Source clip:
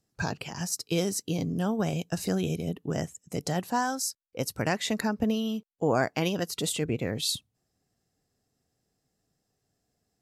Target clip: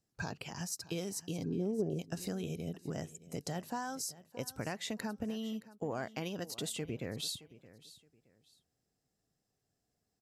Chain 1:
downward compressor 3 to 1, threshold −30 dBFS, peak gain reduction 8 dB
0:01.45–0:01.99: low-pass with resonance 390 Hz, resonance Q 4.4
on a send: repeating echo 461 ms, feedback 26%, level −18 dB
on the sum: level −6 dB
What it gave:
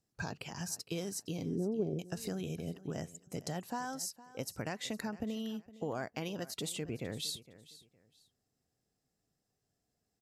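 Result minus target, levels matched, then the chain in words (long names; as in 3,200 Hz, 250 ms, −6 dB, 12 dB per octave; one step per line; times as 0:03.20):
echo 159 ms early
downward compressor 3 to 1, threshold −30 dBFS, peak gain reduction 8 dB
0:01.45–0:01.99: low-pass with resonance 390 Hz, resonance Q 4.4
on a send: repeating echo 620 ms, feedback 26%, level −18 dB
on the sum: level −6 dB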